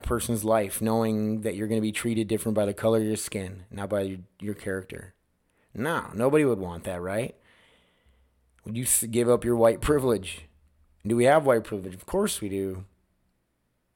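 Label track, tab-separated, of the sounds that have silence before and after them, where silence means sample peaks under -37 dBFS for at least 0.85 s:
8.660000	12.820000	sound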